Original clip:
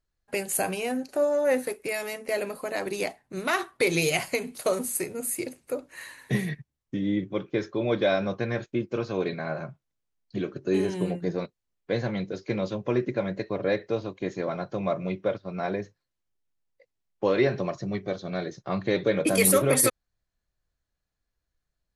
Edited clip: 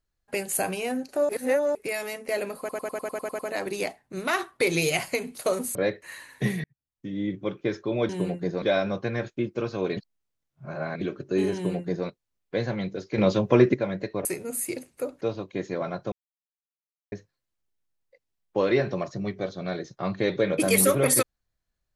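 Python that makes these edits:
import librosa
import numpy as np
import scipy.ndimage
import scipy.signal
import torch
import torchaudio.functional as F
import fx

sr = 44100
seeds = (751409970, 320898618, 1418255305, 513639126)

y = fx.edit(x, sr, fx.reverse_span(start_s=1.29, length_s=0.46),
    fx.stutter(start_s=2.59, slice_s=0.1, count=9),
    fx.swap(start_s=4.95, length_s=0.96, other_s=13.61, other_length_s=0.27),
    fx.fade_in_span(start_s=6.53, length_s=0.82),
    fx.reverse_span(start_s=9.33, length_s=1.04),
    fx.duplicate(start_s=10.9, length_s=0.53, to_s=7.98),
    fx.clip_gain(start_s=12.54, length_s=0.56, db=8.0),
    fx.silence(start_s=14.79, length_s=1.0), tone=tone)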